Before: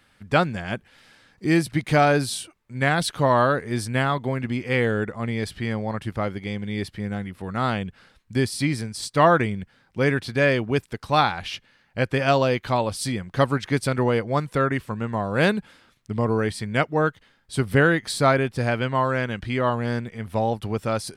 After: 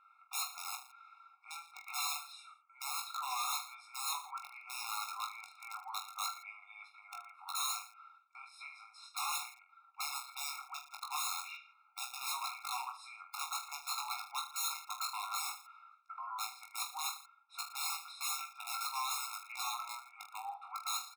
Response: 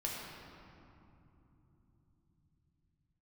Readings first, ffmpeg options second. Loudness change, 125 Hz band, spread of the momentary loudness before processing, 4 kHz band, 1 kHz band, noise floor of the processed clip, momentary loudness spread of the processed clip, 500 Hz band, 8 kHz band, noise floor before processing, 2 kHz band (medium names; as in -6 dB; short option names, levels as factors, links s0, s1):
-16.5 dB, under -40 dB, 11 LU, -8.0 dB, -15.0 dB, -67 dBFS, 14 LU, under -40 dB, -3.0 dB, -62 dBFS, -20.5 dB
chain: -filter_complex "[0:a]acompressor=threshold=0.0562:ratio=5,bandpass=f=1400:t=q:w=8.1:csg=0,aeval=exprs='(mod(89.1*val(0)+1,2)-1)/89.1':c=same,asplit=2[s0][s1];[s1]aecho=0:1:20|45|76.25|115.3|164.1:0.631|0.398|0.251|0.158|0.1[s2];[s0][s2]amix=inputs=2:normalize=0,afftfilt=real='re*eq(mod(floor(b*sr/1024/710),2),1)':imag='im*eq(mod(floor(b*sr/1024/710),2),1)':win_size=1024:overlap=0.75,volume=2.66"